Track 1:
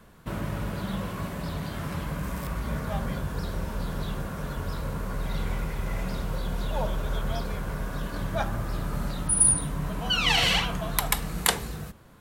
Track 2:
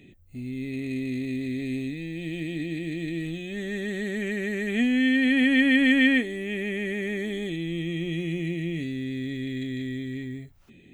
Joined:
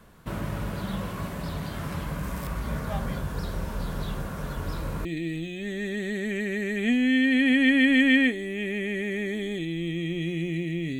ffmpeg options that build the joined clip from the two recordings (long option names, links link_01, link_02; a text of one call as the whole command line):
ffmpeg -i cue0.wav -i cue1.wav -filter_complex "[1:a]asplit=2[link_01][link_02];[0:a]apad=whole_dur=10.99,atrim=end=10.99,atrim=end=5.052[link_03];[link_02]atrim=start=2.958:end=8.9[link_04];[link_01]atrim=start=2.54:end=2.96,asetpts=PTS-STARTPTS,volume=-15dB,afade=type=in:duration=0.004:curve=hsin,afade=type=out:start_time=0.416:duration=0.004:curve=hsin,adelay=4630[link_05];[link_03][link_04]acrossfade=duration=0.004:curve1=hsin:curve2=hsin[link_06];[link_06][link_05]amix=inputs=2:normalize=0" out.wav